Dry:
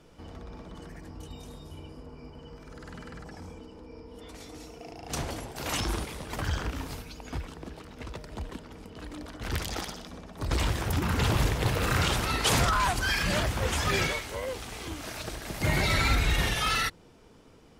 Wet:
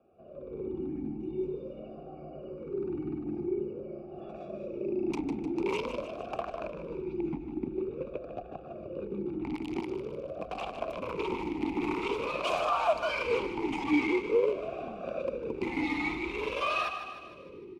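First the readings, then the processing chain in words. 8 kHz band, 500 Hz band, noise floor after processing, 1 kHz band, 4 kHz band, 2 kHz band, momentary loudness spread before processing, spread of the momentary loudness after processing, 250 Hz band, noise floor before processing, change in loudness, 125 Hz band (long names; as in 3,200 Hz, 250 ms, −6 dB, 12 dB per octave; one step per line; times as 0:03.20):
below −20 dB, +5.0 dB, −46 dBFS, −2.5 dB, −11.5 dB, −6.0 dB, 21 LU, 15 LU, +3.5 dB, −55 dBFS, −4.5 dB, −15.0 dB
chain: adaptive Wiener filter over 41 samples
automatic gain control gain up to 14 dB
in parallel at 0 dB: brickwall limiter −14 dBFS, peak gain reduction 11.5 dB
on the sum: downward compressor 3 to 1, threshold −24 dBFS, peak gain reduction 13 dB
wave folding −17 dBFS
frequency shifter −100 Hz
on a send: repeating echo 152 ms, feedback 56%, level −9.5 dB
on the sum: formant filter swept between two vowels a-u 0.47 Hz
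level +7.5 dB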